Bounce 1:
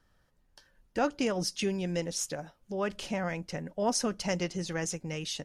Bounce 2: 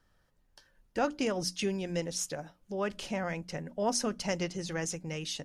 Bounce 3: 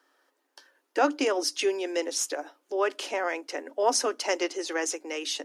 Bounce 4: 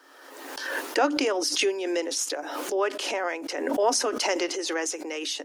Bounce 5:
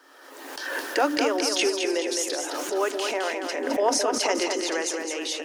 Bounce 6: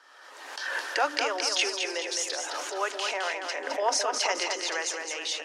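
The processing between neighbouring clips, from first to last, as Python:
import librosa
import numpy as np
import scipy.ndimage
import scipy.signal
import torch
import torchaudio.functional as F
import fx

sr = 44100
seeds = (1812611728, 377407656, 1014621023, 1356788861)

y1 = fx.hum_notches(x, sr, base_hz=60, count=5)
y1 = y1 * librosa.db_to_amplitude(-1.0)
y2 = scipy.signal.sosfilt(scipy.signal.cheby1(6, 3, 270.0, 'highpass', fs=sr, output='sos'), y1)
y2 = y2 * librosa.db_to_amplitude(8.5)
y3 = fx.pre_swell(y2, sr, db_per_s=37.0)
y4 = fx.echo_feedback(y3, sr, ms=213, feedback_pct=50, wet_db=-5.5)
y5 = fx.bandpass_edges(y4, sr, low_hz=730.0, high_hz=7200.0)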